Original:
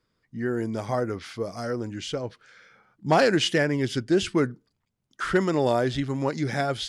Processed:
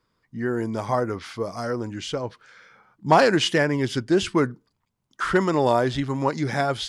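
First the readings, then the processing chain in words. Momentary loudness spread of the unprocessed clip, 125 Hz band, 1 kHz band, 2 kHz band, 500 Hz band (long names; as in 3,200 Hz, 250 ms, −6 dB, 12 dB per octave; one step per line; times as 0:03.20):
12 LU, +1.5 dB, +5.5 dB, +2.5 dB, +2.0 dB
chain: parametric band 1,000 Hz +7 dB 0.59 octaves
level +1.5 dB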